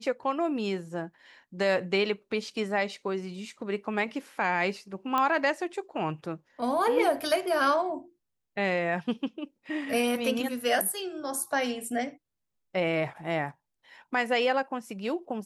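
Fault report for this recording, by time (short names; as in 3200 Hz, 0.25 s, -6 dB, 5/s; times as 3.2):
5.18 pop -14 dBFS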